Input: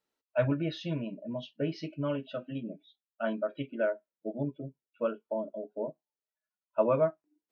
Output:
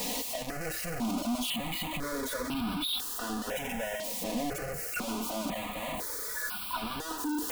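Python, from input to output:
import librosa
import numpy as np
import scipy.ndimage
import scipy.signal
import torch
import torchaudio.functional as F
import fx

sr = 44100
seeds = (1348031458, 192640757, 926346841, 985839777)

y = np.sign(x) * np.sqrt(np.mean(np.square(x)))
y = y + 0.61 * np.pad(y, (int(4.1 * sr / 1000.0), 0))[:len(y)]
y = fx.phaser_held(y, sr, hz=2.0, low_hz=380.0, high_hz=1900.0)
y = F.gain(torch.from_numpy(y), 2.5).numpy()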